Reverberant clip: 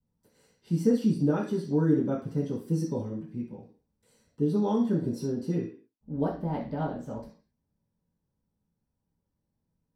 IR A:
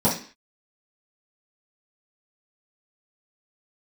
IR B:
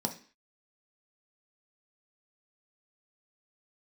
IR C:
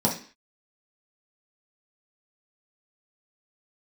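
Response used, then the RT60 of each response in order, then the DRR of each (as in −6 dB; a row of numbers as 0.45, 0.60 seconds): A; 0.40, 0.40, 0.40 seconds; −11.0, 3.5, −4.0 decibels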